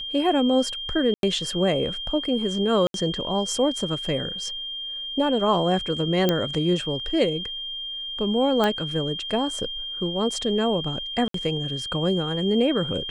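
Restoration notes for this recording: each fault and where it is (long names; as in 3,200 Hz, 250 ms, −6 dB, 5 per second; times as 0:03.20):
whistle 3,200 Hz −30 dBFS
0:01.14–0:01.23: drop-out 92 ms
0:02.87–0:02.94: drop-out 72 ms
0:06.29: click −7 dBFS
0:08.64: click −10 dBFS
0:11.28–0:11.34: drop-out 63 ms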